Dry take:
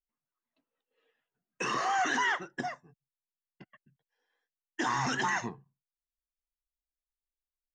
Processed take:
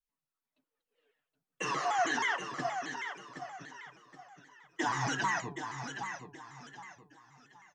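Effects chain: comb 6.7 ms; feedback delay 771 ms, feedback 33%, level -8 dB; vibrato with a chosen wave saw down 6.3 Hz, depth 160 cents; trim -3.5 dB

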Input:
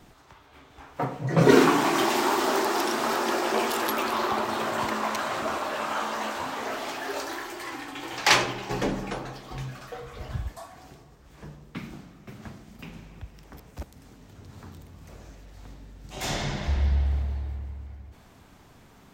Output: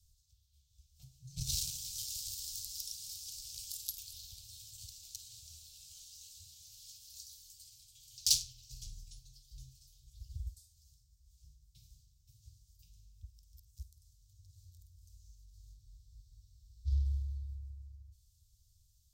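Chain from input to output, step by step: Chebyshev shaper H 7 -21 dB, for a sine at -4.5 dBFS; inverse Chebyshev band-stop 220–2000 Hz, stop band 50 dB; on a send: flutter echo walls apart 8.9 m, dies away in 0.21 s; on the sum: spectral freeze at 15.79 s, 1.08 s

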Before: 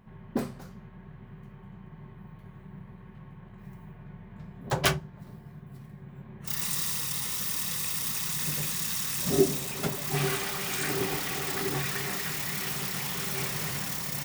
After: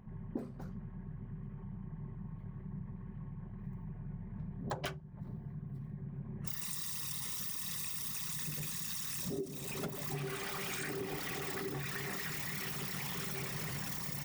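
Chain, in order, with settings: resonances exaggerated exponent 1.5; compression 12:1, threshold -38 dBFS, peak gain reduction 22 dB; trim +2 dB

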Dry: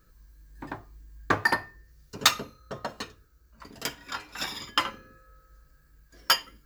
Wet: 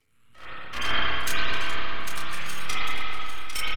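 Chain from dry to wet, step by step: coarse spectral quantiser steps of 30 dB; steep low-pass 7.2 kHz 72 dB/octave; resonant low shelf 430 Hz -10 dB, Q 3; formant-preserving pitch shift +5 st; half-wave rectifier; wide varispeed 1.77×; doubling 30 ms -6 dB; on a send: echo whose repeats swap between lows and highs 400 ms, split 1.6 kHz, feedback 70%, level -8 dB; on the sum: spring tank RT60 2.6 s, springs 48/60 ms, chirp 65 ms, DRR -7.5 dB; transient shaper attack -12 dB, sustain +6 dB

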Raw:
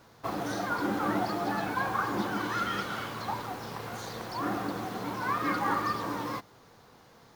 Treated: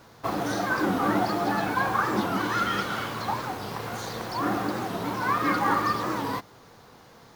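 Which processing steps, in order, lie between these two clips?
warped record 45 rpm, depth 160 cents; trim +5 dB

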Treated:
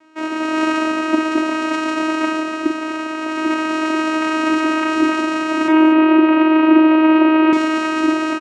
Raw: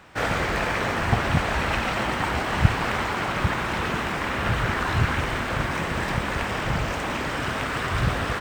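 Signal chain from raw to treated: level rider gain up to 11.5 dB; vocoder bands 4, saw 315 Hz; 5.68–7.53 s: cabinet simulation 180–3100 Hz, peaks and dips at 330 Hz +10 dB, 560 Hz +6 dB, 970 Hz +6 dB, 2.6 kHz +4 dB; multi-tap echo 42/246 ms -7/-14 dB

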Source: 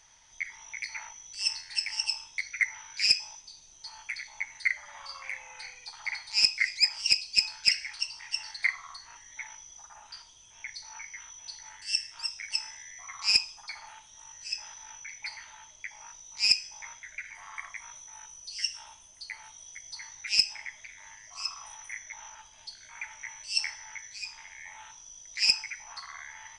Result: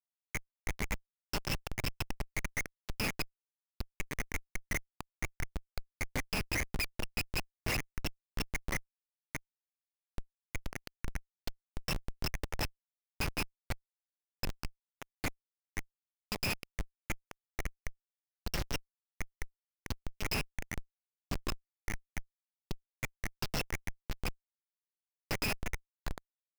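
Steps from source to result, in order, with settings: time reversed locally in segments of 111 ms; low-pass that closes with the level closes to 2.7 kHz, closed at -28 dBFS; Schmitt trigger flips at -32 dBFS; trim +8 dB

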